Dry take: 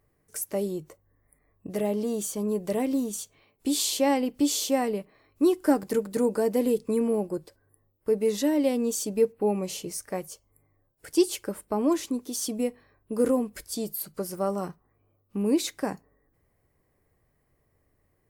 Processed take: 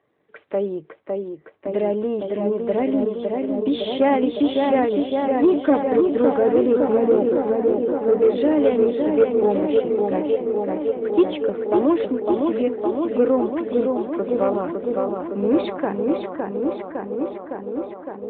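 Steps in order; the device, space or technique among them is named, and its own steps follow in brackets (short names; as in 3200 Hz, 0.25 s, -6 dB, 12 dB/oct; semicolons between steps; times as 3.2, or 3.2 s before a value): 10.29–11.17 bell 83 Hz -3 dB 0.74 oct; tape echo 0.559 s, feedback 86%, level -3 dB, low-pass 2800 Hz; telephone (BPF 270–3300 Hz; soft clip -15.5 dBFS, distortion -19 dB; gain +8 dB; AMR-NB 12.2 kbps 8000 Hz)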